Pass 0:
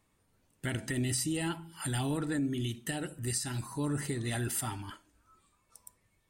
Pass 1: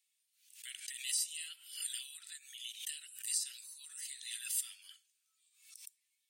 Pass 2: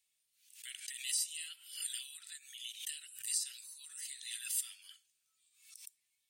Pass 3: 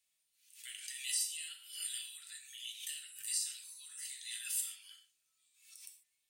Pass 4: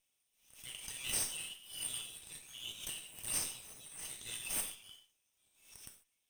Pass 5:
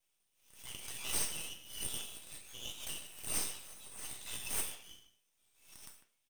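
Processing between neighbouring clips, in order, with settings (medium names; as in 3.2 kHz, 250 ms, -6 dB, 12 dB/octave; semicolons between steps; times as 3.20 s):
inverse Chebyshev high-pass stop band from 610 Hz, stop band 70 dB; swell ahead of each attack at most 97 dB/s; trim -1 dB
bass shelf 200 Hz +8.5 dB
gated-style reverb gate 170 ms falling, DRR 1.5 dB; trim -2 dB
comb filter that takes the minimum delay 0.35 ms; trim +1 dB
speakerphone echo 150 ms, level -12 dB; half-wave rectifier; trim +5 dB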